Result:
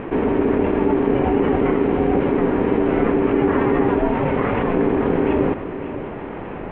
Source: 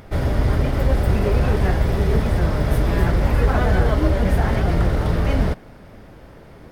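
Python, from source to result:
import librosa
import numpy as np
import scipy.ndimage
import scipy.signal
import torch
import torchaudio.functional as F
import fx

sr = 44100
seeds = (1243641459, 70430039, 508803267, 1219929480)

y = fx.highpass(x, sr, hz=110.0, slope=6, at=(4.05, 4.74))
y = y * np.sin(2.0 * np.pi * 340.0 * np.arange(len(y)) / sr)
y = scipy.signal.sosfilt(scipy.signal.butter(8, 3000.0, 'lowpass', fs=sr, output='sos'), y)
y = y + 10.0 ** (-22.0 / 20.0) * np.pad(y, (int(554 * sr / 1000.0), 0))[:len(y)]
y = fx.env_flatten(y, sr, amount_pct=50)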